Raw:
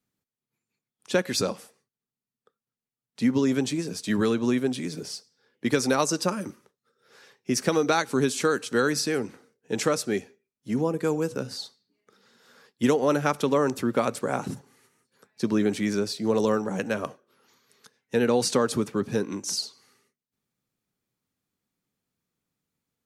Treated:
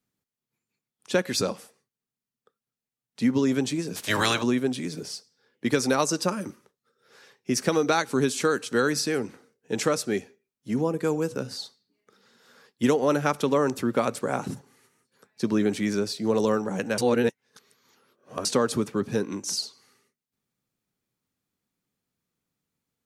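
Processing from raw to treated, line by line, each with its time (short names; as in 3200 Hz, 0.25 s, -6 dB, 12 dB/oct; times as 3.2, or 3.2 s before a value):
3.95–4.42 spectral limiter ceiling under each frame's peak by 27 dB
16.98–18.45 reverse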